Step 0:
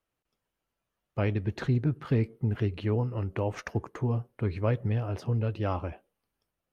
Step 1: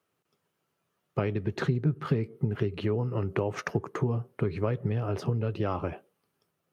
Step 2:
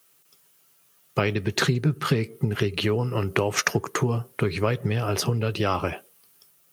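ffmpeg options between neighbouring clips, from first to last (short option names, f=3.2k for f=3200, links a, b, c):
-af "highpass=f=94:w=0.5412,highpass=f=94:w=1.3066,acompressor=threshold=-32dB:ratio=6,equalizer=f=160:t=o:w=0.33:g=7,equalizer=f=400:t=o:w=0.33:g=7,equalizer=f=1.25k:t=o:w=0.33:g=4,volume=5.5dB"
-af "crystalizer=i=8.5:c=0,volume=3.5dB"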